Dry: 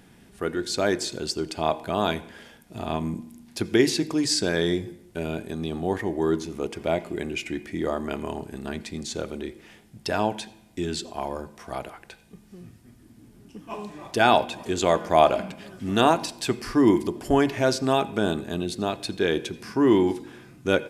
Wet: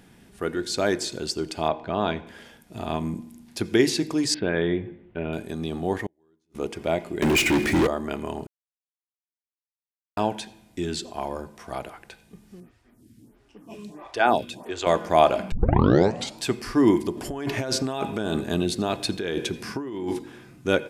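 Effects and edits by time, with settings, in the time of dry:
1.68–2.27 air absorption 180 m
4.34–5.33 steep low-pass 3000 Hz
6.06–6.55 flipped gate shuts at -24 dBFS, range -41 dB
7.22–7.87 sample leveller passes 5
8.47–10.17 mute
12.6–14.87 photocell phaser 1.5 Hz
15.52 tape start 0.90 s
17.17–20.19 negative-ratio compressor -27 dBFS

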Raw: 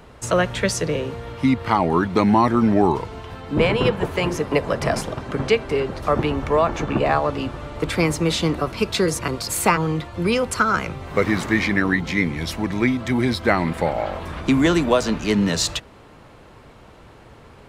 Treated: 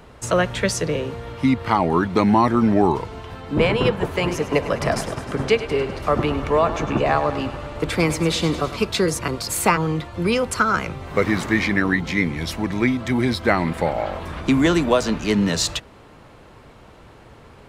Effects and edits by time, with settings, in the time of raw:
4.17–8.85 thinning echo 0.102 s, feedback 69%, level -12 dB

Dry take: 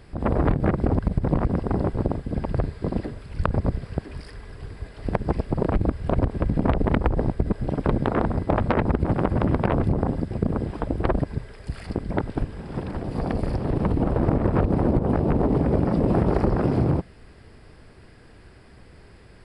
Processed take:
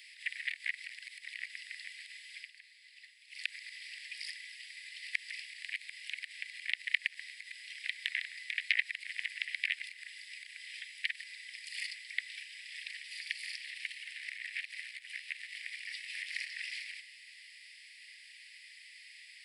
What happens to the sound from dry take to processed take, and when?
2.37–3.4 dip -12 dB, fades 0.13 s
whole clip: steep high-pass 1900 Hz 96 dB/oct; tilt -1.5 dB/oct; gain +10.5 dB

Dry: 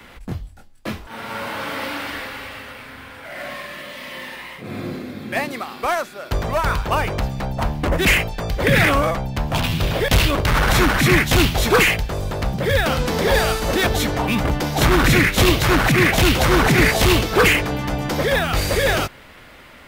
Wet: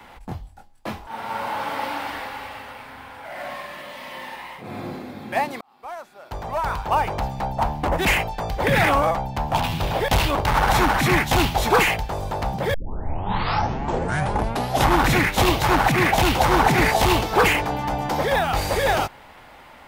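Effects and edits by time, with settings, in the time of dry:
5.61–7.28 fade in
12.74 tape start 2.28 s
whole clip: bell 840 Hz +12.5 dB 0.63 oct; gain -5 dB

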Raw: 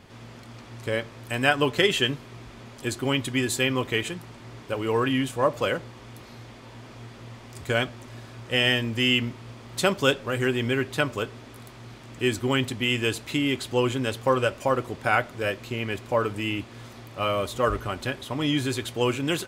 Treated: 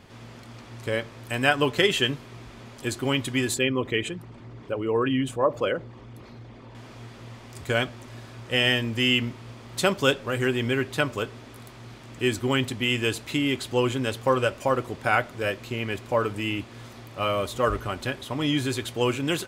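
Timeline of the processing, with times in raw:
3.54–6.75 formant sharpening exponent 1.5

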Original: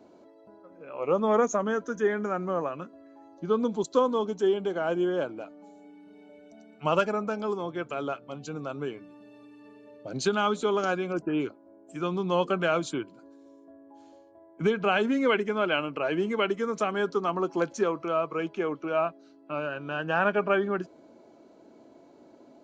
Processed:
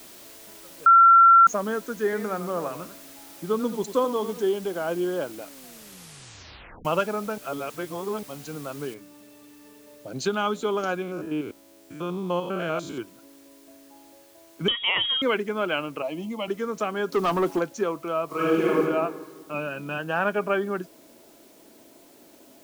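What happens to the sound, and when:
0.86–1.47 bleep 1360 Hz -10 dBFS
2.03–4.43 warbling echo 90 ms, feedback 34%, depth 151 cents, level -11 dB
5.45 tape stop 1.40 s
7.38–8.23 reverse
8.94 noise floor step -47 dB -57 dB
11.02–12.98 stepped spectrum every 0.1 s
14.68–15.22 inverted band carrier 3500 Hz
16.02–16.48 fixed phaser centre 410 Hz, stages 6
17.12–17.59 sample leveller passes 2
18.25–18.8 reverb throw, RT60 1.5 s, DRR -8 dB
19.54–19.98 small resonant body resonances 200/2500 Hz, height 16 dB, ringing for 95 ms

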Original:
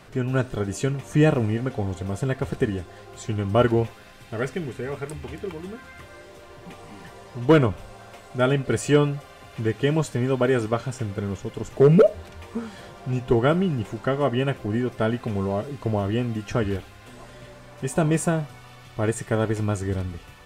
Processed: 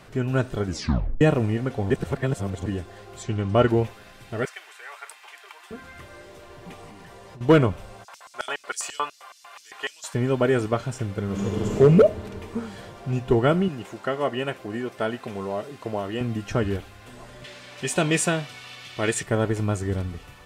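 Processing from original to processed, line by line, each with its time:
0.65 tape stop 0.56 s
1.9–2.66 reverse
3.23–3.69 LPF 7400 Hz
4.45–5.71 HPF 860 Hz 24 dB/oct
6.89–7.41 compressor 10:1, threshold -40 dBFS
8.03–10.13 LFO high-pass square 8.6 Hz -> 2.7 Hz 990–5400 Hz
11.25–11.77 reverb throw, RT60 3 s, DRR -5.5 dB
13.68–16.21 HPF 430 Hz 6 dB/oct
17.44–19.23 weighting filter D

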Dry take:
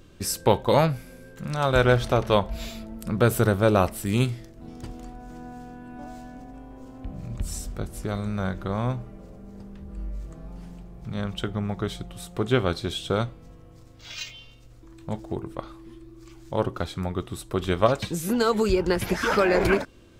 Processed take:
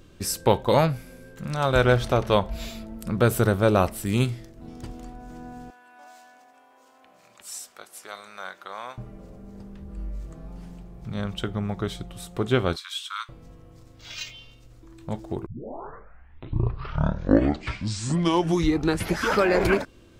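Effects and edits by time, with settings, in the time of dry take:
5.7–8.98 HPF 950 Hz
12.76–13.29 steep high-pass 1000 Hz 96 dB/oct
15.46 tape start 3.86 s

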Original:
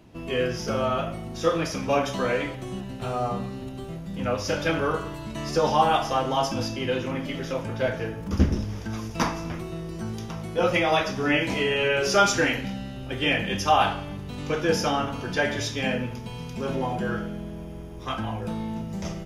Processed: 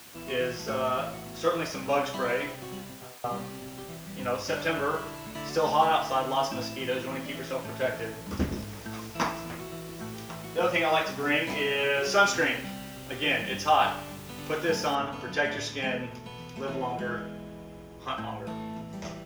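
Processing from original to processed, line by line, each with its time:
2.78–3.24 studio fade out
14.95 noise floor step -44 dB -61 dB
whole clip: LPF 1400 Hz 6 dB/oct; tilt +3 dB/oct

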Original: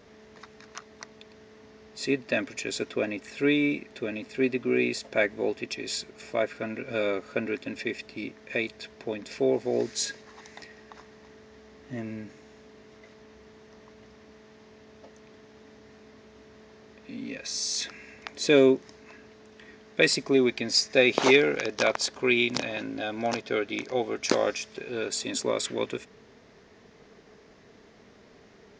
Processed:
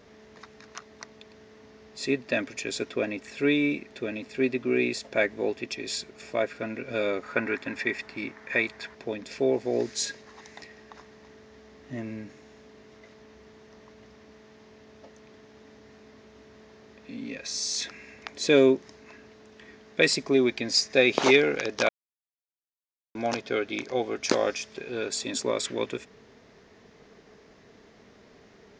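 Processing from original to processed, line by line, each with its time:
7.23–8.95 band shelf 1300 Hz +8.5 dB
21.89–23.15 mute

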